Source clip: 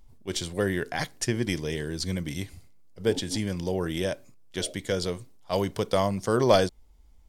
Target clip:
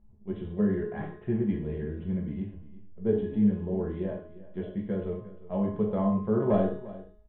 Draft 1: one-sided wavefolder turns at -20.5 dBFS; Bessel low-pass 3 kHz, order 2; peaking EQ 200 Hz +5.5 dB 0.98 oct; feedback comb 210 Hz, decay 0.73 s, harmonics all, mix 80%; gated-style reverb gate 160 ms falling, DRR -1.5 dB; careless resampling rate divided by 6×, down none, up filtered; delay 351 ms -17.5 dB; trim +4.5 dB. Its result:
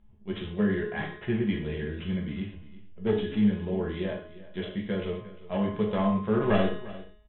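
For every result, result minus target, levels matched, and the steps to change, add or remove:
4 kHz band +18.0 dB; one-sided wavefolder: distortion +12 dB
change: Bessel low-pass 760 Hz, order 2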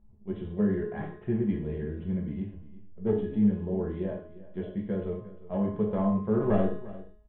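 one-sided wavefolder: distortion +12 dB
change: one-sided wavefolder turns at -14 dBFS

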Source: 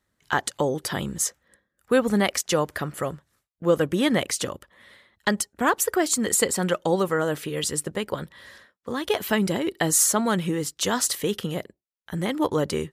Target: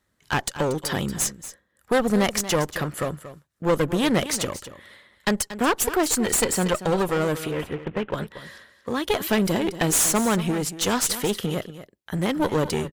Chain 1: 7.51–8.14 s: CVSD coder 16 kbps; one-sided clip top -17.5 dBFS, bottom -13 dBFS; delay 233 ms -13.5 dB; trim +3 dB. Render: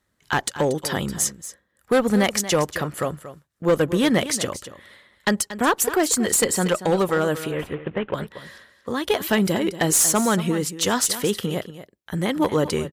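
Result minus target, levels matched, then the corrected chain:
one-sided clip: distortion -8 dB
7.51–8.14 s: CVSD coder 16 kbps; one-sided clip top -27.5 dBFS, bottom -13 dBFS; delay 233 ms -13.5 dB; trim +3 dB

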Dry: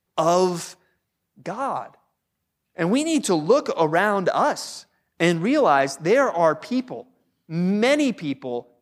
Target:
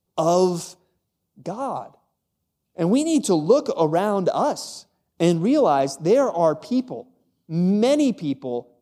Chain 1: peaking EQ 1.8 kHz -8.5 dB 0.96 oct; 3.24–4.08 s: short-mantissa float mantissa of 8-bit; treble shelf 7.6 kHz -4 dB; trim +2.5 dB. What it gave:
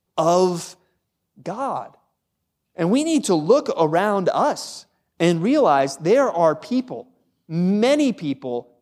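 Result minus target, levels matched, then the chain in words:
2 kHz band +6.5 dB
peaking EQ 1.8 kHz -19.5 dB 0.96 oct; 3.24–4.08 s: short-mantissa float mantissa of 8-bit; treble shelf 7.6 kHz -4 dB; trim +2.5 dB

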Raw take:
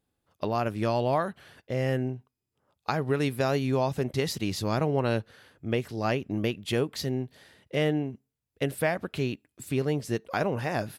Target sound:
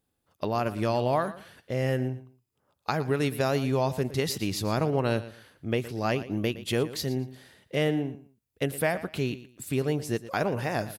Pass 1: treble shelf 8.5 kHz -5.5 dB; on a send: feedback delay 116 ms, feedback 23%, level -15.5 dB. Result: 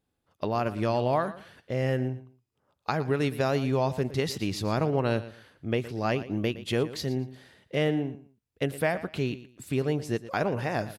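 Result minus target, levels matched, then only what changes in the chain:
8 kHz band -5.0 dB
change: treble shelf 8.5 kHz +6 dB

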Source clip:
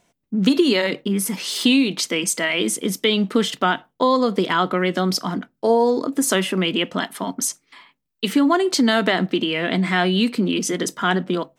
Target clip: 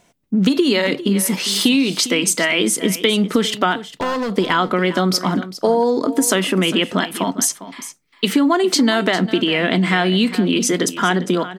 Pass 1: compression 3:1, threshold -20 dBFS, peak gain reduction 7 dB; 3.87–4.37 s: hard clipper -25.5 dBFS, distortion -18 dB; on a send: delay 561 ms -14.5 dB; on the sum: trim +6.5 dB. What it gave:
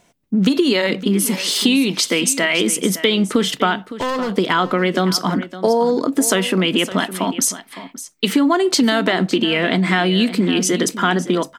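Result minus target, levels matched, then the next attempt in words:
echo 158 ms late
compression 3:1, threshold -20 dBFS, peak gain reduction 7 dB; 3.87–4.37 s: hard clipper -25.5 dBFS, distortion -18 dB; on a send: delay 403 ms -14.5 dB; on the sum: trim +6.5 dB

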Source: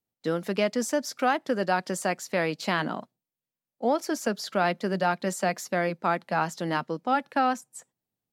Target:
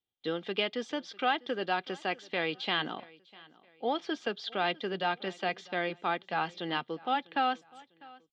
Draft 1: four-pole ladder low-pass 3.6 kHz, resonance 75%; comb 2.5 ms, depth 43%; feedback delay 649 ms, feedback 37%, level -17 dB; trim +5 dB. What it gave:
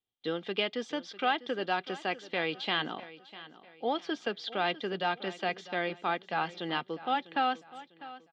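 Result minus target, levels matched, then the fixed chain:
echo-to-direct +6 dB
four-pole ladder low-pass 3.6 kHz, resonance 75%; comb 2.5 ms, depth 43%; feedback delay 649 ms, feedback 37%, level -23 dB; trim +5 dB

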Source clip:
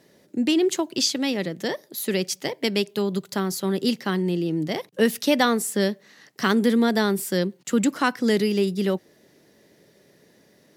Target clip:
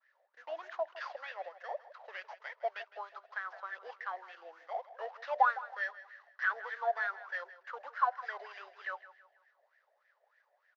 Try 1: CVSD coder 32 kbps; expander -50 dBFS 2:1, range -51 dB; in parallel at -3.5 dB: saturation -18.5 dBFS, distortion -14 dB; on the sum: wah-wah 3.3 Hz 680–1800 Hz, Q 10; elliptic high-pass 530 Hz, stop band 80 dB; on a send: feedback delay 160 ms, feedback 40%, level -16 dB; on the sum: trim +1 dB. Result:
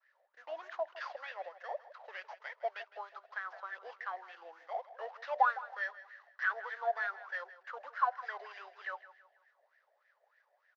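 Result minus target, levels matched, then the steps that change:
saturation: distortion +17 dB
change: saturation -7 dBFS, distortion -31 dB

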